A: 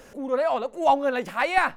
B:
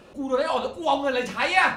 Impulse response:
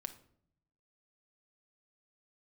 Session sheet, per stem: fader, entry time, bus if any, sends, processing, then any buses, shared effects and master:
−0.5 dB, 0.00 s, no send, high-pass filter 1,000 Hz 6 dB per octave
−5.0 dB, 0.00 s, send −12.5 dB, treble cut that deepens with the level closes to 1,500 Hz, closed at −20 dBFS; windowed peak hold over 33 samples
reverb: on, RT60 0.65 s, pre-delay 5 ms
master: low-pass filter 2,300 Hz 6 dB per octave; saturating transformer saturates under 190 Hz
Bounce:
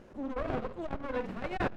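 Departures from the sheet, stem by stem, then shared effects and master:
stem A −0.5 dB → −12.0 dB
stem B: polarity flipped

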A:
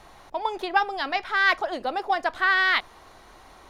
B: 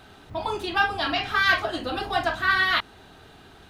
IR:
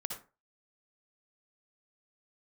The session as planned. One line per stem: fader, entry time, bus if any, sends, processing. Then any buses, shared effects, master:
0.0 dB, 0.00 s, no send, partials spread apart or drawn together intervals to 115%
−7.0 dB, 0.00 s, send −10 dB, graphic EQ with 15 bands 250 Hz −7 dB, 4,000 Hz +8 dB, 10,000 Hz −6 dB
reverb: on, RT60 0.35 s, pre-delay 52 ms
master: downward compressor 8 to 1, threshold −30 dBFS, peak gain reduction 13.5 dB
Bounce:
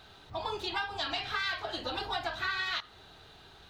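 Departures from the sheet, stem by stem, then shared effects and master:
stem A 0.0 dB → −12.0 dB
stem B: send −10 dB → −19 dB

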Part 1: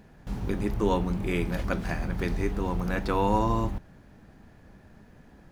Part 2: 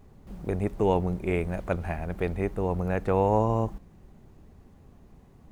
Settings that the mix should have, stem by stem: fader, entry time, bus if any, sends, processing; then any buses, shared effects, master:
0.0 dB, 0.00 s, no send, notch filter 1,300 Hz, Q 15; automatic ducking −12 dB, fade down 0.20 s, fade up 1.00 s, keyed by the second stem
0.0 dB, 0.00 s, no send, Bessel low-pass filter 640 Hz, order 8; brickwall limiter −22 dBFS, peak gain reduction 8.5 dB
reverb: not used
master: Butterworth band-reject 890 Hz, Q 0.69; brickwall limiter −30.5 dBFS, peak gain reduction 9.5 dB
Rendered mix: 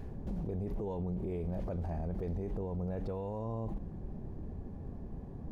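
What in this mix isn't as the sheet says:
stem 2 0.0 dB → +10.0 dB
master: missing Butterworth band-reject 890 Hz, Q 0.69

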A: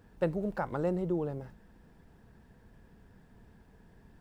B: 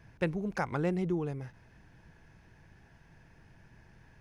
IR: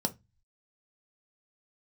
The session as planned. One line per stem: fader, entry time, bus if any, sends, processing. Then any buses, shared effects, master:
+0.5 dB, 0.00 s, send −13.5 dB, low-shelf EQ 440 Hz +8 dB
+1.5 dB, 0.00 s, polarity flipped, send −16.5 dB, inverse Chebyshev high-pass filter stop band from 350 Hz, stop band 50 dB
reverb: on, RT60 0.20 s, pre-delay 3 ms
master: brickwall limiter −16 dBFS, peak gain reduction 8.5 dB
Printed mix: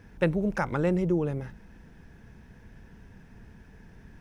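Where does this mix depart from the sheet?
stem A: send off
master: missing brickwall limiter −16 dBFS, peak gain reduction 8.5 dB

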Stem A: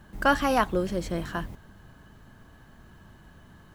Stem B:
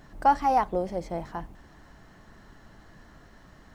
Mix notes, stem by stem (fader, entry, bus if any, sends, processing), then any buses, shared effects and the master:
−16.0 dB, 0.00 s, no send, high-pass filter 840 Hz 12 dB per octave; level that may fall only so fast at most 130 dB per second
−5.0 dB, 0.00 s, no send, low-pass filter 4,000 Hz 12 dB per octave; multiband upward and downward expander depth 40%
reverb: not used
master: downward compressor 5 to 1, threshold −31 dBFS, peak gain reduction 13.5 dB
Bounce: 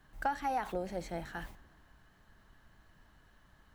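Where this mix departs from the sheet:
stem A −16.0 dB → −10.0 dB
stem B: polarity flipped

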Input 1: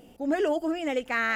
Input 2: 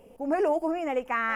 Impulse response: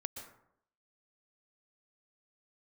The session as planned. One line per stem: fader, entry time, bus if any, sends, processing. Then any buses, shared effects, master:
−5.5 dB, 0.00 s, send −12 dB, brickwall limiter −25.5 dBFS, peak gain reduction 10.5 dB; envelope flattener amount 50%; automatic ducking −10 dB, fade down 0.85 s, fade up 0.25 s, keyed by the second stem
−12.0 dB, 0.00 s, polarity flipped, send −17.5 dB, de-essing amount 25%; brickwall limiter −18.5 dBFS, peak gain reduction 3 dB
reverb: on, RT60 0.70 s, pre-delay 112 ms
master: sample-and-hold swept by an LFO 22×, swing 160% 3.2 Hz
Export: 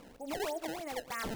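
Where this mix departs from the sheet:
stem 1 −5.5 dB → −17.0 dB
reverb return +8.0 dB

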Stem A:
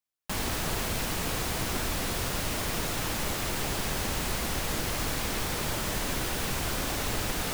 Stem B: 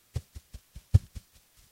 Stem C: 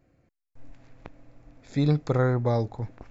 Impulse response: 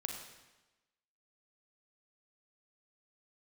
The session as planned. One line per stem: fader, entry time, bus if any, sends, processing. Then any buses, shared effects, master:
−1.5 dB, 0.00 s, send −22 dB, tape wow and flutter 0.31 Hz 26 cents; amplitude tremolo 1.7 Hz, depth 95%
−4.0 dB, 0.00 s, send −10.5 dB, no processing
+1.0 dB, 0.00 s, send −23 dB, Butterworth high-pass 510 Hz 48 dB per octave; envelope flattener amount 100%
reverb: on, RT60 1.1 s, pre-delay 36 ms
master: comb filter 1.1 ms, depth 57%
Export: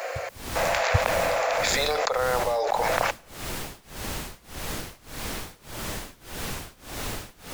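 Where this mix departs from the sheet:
stem B: send −10.5 dB → −19.5 dB
master: missing comb filter 1.1 ms, depth 57%

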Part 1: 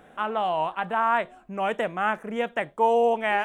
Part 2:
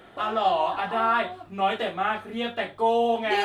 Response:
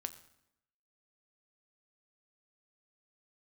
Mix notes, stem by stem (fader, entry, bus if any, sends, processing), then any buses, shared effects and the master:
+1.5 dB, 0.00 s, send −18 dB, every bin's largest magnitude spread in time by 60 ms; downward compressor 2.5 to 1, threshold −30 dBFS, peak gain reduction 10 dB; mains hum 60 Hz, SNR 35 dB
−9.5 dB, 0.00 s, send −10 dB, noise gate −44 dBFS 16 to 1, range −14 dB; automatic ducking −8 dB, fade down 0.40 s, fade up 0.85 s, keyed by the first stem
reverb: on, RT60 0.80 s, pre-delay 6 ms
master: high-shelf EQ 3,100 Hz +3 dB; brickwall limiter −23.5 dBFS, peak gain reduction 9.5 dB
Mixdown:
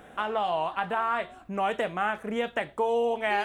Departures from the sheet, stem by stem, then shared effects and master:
stem 1: missing every bin's largest magnitude spread in time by 60 ms
master: missing brickwall limiter −23.5 dBFS, peak gain reduction 9.5 dB

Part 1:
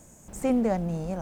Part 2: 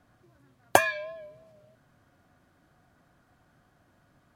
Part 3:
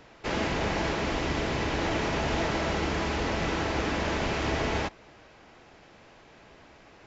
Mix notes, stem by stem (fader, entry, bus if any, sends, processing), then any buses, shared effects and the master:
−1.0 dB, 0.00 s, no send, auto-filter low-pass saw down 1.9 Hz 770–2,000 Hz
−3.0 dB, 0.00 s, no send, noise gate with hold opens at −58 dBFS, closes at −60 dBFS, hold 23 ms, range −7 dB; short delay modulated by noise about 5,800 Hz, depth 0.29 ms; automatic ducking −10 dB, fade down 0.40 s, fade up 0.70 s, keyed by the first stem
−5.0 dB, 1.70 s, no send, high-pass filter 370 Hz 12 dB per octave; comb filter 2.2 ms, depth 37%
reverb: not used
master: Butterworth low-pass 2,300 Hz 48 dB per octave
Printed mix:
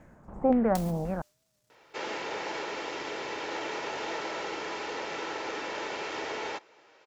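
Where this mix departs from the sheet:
stem 2 −3.0 dB → −12.0 dB
master: missing Butterworth low-pass 2,300 Hz 48 dB per octave

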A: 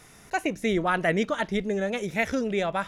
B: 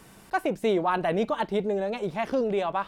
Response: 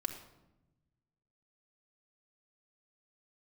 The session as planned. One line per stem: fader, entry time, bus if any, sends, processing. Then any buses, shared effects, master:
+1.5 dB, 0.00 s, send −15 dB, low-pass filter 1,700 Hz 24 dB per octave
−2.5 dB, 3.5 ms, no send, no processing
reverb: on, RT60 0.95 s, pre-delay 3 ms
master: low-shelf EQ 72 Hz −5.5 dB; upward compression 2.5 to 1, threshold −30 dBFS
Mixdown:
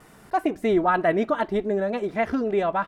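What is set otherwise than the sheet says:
stem A: send −15 dB → −21 dB
master: missing upward compression 2.5 to 1, threshold −30 dBFS

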